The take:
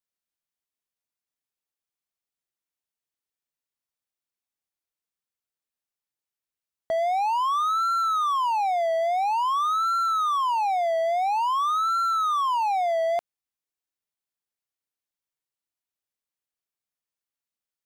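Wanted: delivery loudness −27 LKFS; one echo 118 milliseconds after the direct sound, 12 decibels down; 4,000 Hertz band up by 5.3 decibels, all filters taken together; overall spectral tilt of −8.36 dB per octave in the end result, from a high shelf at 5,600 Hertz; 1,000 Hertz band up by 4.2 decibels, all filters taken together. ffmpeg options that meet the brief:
ffmpeg -i in.wav -af "equalizer=frequency=1000:width_type=o:gain=5,equalizer=frequency=4000:width_type=o:gain=3,highshelf=frequency=5600:gain=8.5,aecho=1:1:118:0.251,volume=-7.5dB" out.wav

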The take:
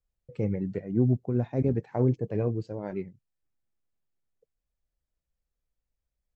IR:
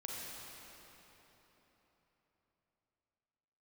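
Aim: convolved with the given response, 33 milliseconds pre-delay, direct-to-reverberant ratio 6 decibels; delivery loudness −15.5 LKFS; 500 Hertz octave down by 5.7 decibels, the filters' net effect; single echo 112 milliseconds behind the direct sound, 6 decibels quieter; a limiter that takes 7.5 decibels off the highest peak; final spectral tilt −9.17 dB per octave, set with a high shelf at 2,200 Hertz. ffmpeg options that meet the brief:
-filter_complex "[0:a]equalizer=frequency=500:width_type=o:gain=-8,highshelf=frequency=2200:gain=6,alimiter=limit=-22.5dB:level=0:latency=1,aecho=1:1:112:0.501,asplit=2[link_01][link_02];[1:a]atrim=start_sample=2205,adelay=33[link_03];[link_02][link_03]afir=irnorm=-1:irlink=0,volume=-6dB[link_04];[link_01][link_04]amix=inputs=2:normalize=0,volume=16dB"

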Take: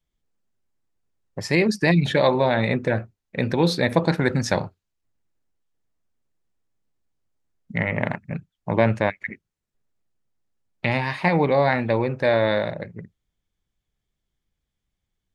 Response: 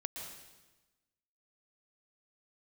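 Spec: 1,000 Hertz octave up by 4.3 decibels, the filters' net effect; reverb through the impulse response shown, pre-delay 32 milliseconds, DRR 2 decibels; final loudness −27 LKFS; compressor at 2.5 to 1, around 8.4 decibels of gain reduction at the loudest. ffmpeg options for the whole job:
-filter_complex "[0:a]equalizer=frequency=1000:width_type=o:gain=5.5,acompressor=threshold=-24dB:ratio=2.5,asplit=2[link_01][link_02];[1:a]atrim=start_sample=2205,adelay=32[link_03];[link_02][link_03]afir=irnorm=-1:irlink=0,volume=-1.5dB[link_04];[link_01][link_04]amix=inputs=2:normalize=0,volume=-1.5dB"

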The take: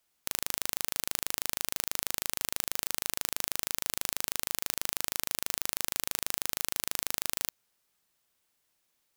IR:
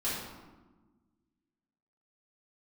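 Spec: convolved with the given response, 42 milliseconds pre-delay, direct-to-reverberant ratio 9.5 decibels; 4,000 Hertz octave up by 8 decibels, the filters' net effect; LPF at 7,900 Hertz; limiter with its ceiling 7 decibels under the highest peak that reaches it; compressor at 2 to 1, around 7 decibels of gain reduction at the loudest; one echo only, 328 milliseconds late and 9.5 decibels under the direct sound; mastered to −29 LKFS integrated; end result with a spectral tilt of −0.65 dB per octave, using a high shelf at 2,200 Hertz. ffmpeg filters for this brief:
-filter_complex "[0:a]lowpass=7900,highshelf=frequency=2200:gain=4,equalizer=frequency=4000:width_type=o:gain=6.5,acompressor=threshold=-36dB:ratio=2,alimiter=limit=-16dB:level=0:latency=1,aecho=1:1:328:0.335,asplit=2[link_01][link_02];[1:a]atrim=start_sample=2205,adelay=42[link_03];[link_02][link_03]afir=irnorm=-1:irlink=0,volume=-16dB[link_04];[link_01][link_04]amix=inputs=2:normalize=0,volume=12dB"

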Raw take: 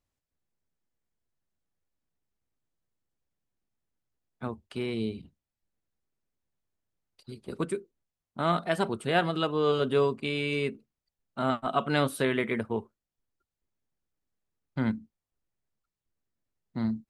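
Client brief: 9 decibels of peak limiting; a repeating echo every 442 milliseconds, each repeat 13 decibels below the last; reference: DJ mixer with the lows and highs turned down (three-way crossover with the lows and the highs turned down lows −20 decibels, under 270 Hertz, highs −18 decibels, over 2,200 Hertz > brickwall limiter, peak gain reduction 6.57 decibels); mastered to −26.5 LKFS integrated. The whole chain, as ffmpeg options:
ffmpeg -i in.wav -filter_complex "[0:a]alimiter=limit=-20.5dB:level=0:latency=1,acrossover=split=270 2200:gain=0.1 1 0.126[link_01][link_02][link_03];[link_01][link_02][link_03]amix=inputs=3:normalize=0,aecho=1:1:442|884|1326:0.224|0.0493|0.0108,volume=12dB,alimiter=limit=-15dB:level=0:latency=1" out.wav

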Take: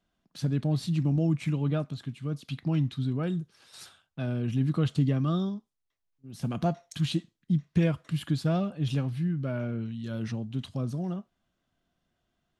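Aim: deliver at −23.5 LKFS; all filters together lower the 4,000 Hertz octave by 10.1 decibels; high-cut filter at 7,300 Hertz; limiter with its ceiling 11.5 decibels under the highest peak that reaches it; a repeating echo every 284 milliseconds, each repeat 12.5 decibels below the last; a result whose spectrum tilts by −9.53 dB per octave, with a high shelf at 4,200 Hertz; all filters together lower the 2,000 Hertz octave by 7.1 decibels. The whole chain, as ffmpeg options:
ffmpeg -i in.wav -af "lowpass=7300,equalizer=frequency=2000:width_type=o:gain=-6.5,equalizer=frequency=4000:width_type=o:gain=-5.5,highshelf=frequency=4200:gain=-9,alimiter=level_in=0.5dB:limit=-24dB:level=0:latency=1,volume=-0.5dB,aecho=1:1:284|568|852:0.237|0.0569|0.0137,volume=10dB" out.wav

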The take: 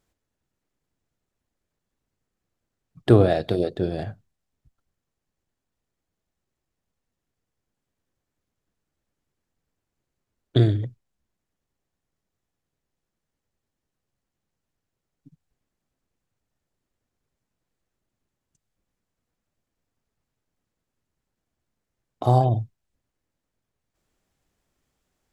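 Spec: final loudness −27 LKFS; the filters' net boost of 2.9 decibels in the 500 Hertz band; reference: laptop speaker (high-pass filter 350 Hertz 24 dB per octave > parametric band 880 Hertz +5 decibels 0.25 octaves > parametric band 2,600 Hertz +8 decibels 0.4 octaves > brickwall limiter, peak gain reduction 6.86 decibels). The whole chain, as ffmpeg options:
ffmpeg -i in.wav -af "highpass=frequency=350:width=0.5412,highpass=frequency=350:width=1.3066,equalizer=frequency=500:width_type=o:gain=4.5,equalizer=frequency=880:width_type=o:width=0.25:gain=5,equalizer=frequency=2600:width_type=o:width=0.4:gain=8,volume=-1dB,alimiter=limit=-13.5dB:level=0:latency=1" out.wav

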